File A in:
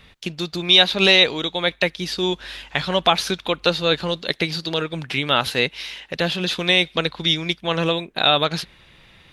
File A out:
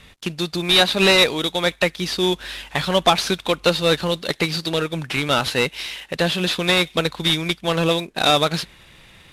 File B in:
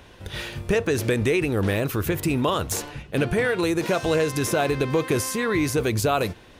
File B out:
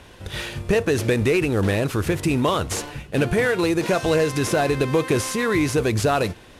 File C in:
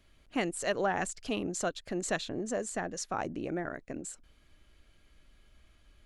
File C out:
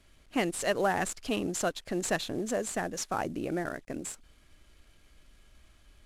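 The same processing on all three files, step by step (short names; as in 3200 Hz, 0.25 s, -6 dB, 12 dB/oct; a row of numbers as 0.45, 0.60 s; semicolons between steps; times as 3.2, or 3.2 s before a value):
CVSD 64 kbps; gain +2.5 dB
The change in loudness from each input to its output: 0.0, +2.0, +2.5 LU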